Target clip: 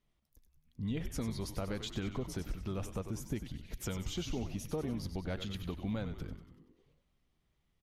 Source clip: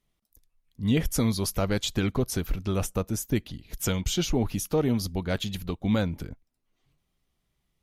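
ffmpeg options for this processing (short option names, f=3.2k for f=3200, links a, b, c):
-filter_complex "[0:a]acompressor=threshold=-35dB:ratio=3,highshelf=f=6.8k:g=-11,asplit=2[a][b];[b]asplit=7[c][d][e][f][g][h][i];[c]adelay=95,afreqshift=-86,volume=-9dB[j];[d]adelay=190,afreqshift=-172,volume=-14dB[k];[e]adelay=285,afreqshift=-258,volume=-19.1dB[l];[f]adelay=380,afreqshift=-344,volume=-24.1dB[m];[g]adelay=475,afreqshift=-430,volume=-29.1dB[n];[h]adelay=570,afreqshift=-516,volume=-34.2dB[o];[i]adelay=665,afreqshift=-602,volume=-39.2dB[p];[j][k][l][m][n][o][p]amix=inputs=7:normalize=0[q];[a][q]amix=inputs=2:normalize=0,volume=-2dB"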